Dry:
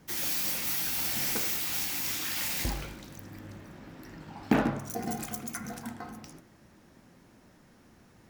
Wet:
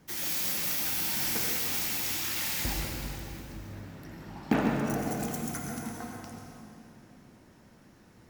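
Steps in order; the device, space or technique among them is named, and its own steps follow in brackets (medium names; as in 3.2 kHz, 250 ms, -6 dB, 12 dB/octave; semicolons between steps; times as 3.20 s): stairwell (reverberation RT60 2.7 s, pre-delay 82 ms, DRR 0.5 dB); trim -2 dB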